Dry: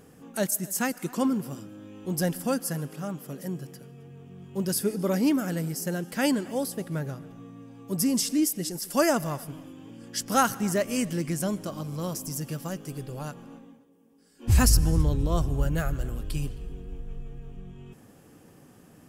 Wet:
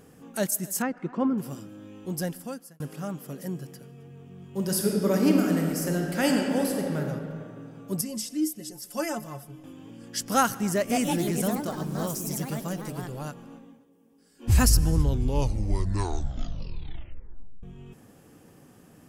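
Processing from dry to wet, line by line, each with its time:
0.82–1.38 s: low-pass 1.7 kHz
1.92–2.80 s: fade out
4.53–7.00 s: reverb throw, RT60 2.5 s, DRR 1 dB
8.01–9.64 s: inharmonic resonator 64 Hz, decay 0.25 s, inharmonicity 0.03
10.73–13.59 s: ever faster or slower copies 168 ms, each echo +3 st, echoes 2
14.93 s: tape stop 2.70 s

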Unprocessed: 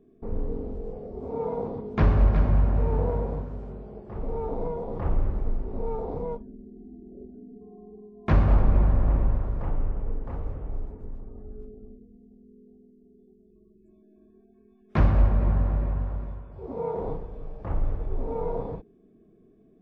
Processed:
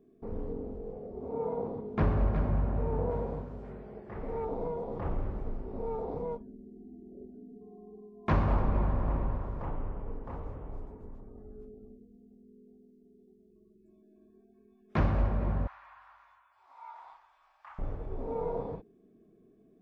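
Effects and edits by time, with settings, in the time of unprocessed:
0.52–3.11 s: treble shelf 2.4 kHz -9 dB
3.64–4.45 s: peaking EQ 1.9 kHz +10.5 dB 0.79 oct
7.87–11.21 s: peaking EQ 1 kHz +5 dB 0.4 oct
15.67–17.79 s: inverse Chebyshev high-pass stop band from 500 Hz
whole clip: bass shelf 89 Hz -8 dB; trim -3 dB

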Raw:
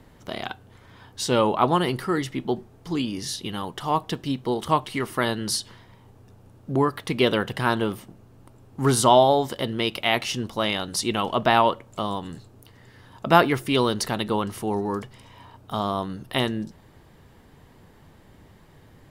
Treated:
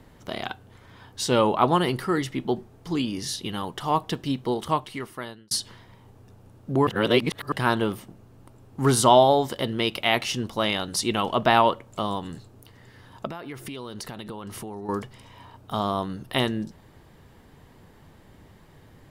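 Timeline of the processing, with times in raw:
4.42–5.51 s: fade out
6.87–7.52 s: reverse
13.26–14.89 s: compression 16:1, threshold -32 dBFS

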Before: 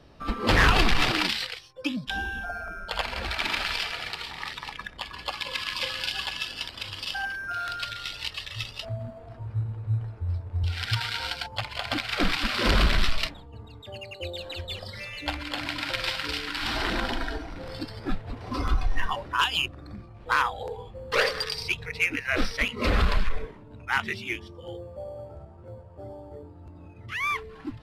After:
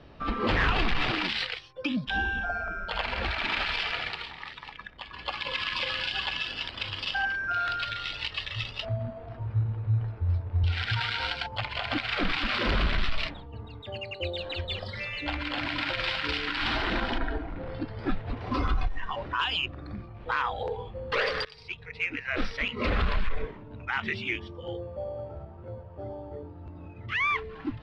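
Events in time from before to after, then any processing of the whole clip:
3.99–5.44 s: dip -8.5 dB, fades 0.40 s
17.18–17.99 s: tape spacing loss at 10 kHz 30 dB
18.87–19.33 s: compression, threshold -30 dBFS
21.45–23.25 s: fade in, from -20 dB
whole clip: Chebyshev low-pass 3.1 kHz, order 2; peak limiter -22 dBFS; trim +3.5 dB

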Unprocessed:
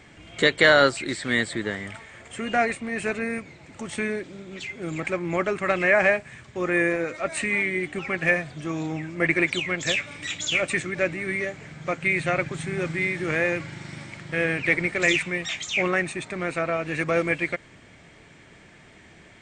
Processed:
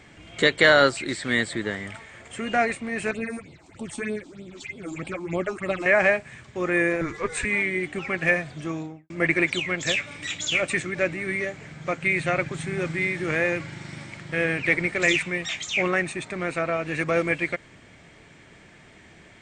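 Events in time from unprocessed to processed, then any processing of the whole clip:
3.11–5.86 s: phase shifter stages 6, 3.2 Hz, lowest notch 120–1900 Hz
7.01–7.45 s: frequency shift -170 Hz
8.63–9.10 s: studio fade out

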